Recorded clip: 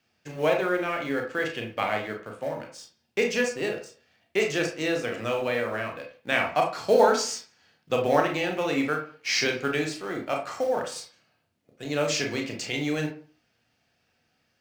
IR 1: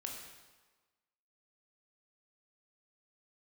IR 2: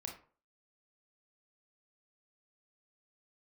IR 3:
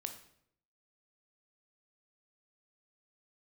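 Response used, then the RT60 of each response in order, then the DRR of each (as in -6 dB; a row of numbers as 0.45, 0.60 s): 2; 1.3, 0.40, 0.70 s; 0.0, 1.5, 5.5 dB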